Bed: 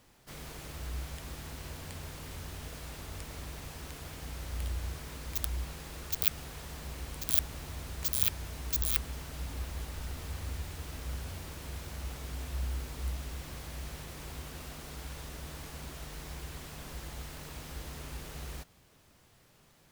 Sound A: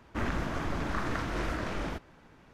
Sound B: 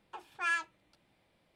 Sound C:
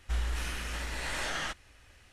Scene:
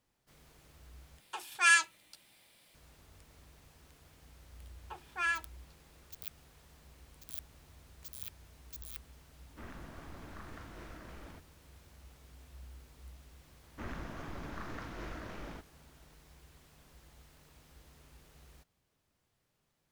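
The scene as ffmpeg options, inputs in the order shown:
-filter_complex "[2:a]asplit=2[a][b];[1:a]asplit=2[c][d];[0:a]volume=-16.5dB[e];[a]crystalizer=i=9.5:c=0[f];[d]aresample=16000,aresample=44100[g];[e]asplit=2[h][i];[h]atrim=end=1.204[j];[f]atrim=end=1.55,asetpts=PTS-STARTPTS,volume=-1.5dB[k];[i]atrim=start=2.746[l];[b]atrim=end=1.55,asetpts=PTS-STARTPTS,volume=-1dB,afade=t=in:d=0.004:c=hsin,afade=t=out:st=1.546:d=0.004:c=hsin,adelay=210357S[m];[c]atrim=end=2.53,asetpts=PTS-STARTPTS,volume=-17dB,afade=t=in:d=0.004:c=hsin,afade=t=out:st=2.526:d=0.004:c=hsin,adelay=9420[n];[g]atrim=end=2.53,asetpts=PTS-STARTPTS,volume=-11dB,afade=t=in:d=0.004:c=hsin,afade=t=out:st=2.526:d=0.004:c=hsin,adelay=13630[o];[j][k]acrossfade=d=0.004:c1=hsin:c2=hsin[p];[p][l]acrossfade=d=0.004:c1=hsin:c2=hsin[q];[q][m][n][o]amix=inputs=4:normalize=0"

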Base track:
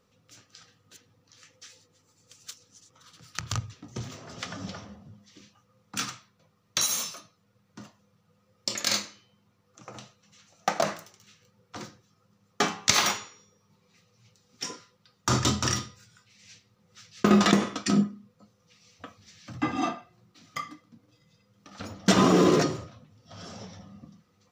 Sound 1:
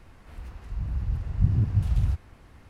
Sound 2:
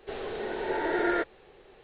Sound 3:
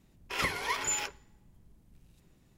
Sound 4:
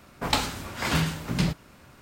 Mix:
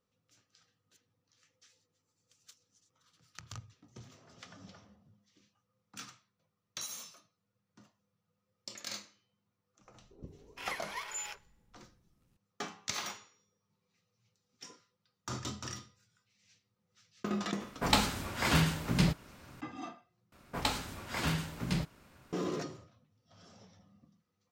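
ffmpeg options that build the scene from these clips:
-filter_complex "[4:a]asplit=2[a][b];[0:a]volume=-15.5dB[c];[3:a]acrossover=split=410[d][e];[e]adelay=470[f];[d][f]amix=inputs=2:normalize=0[g];[c]asplit=2[h][i];[h]atrim=end=20.324[j];[b]atrim=end=2.01,asetpts=PTS-STARTPTS,volume=-8dB[k];[i]atrim=start=22.326[l];[g]atrim=end=2.57,asetpts=PTS-STARTPTS,volume=-8.5dB,afade=t=in:d=0.004:c=hsin,afade=t=out:st=2.566:d=0.004:c=hsin,adelay=9800[m];[a]atrim=end=2.01,asetpts=PTS-STARTPTS,volume=-2.5dB,afade=t=in:d=0.004:c=hsin,afade=t=out:st=2.006:d=0.004:c=hsin,adelay=17600[n];[j][k]acrossfade=d=0.004:c1=hsin:c2=hsin[o];[o][l]acrossfade=d=0.004:c1=hsin:c2=hsin[p];[p][m][n]amix=inputs=3:normalize=0"

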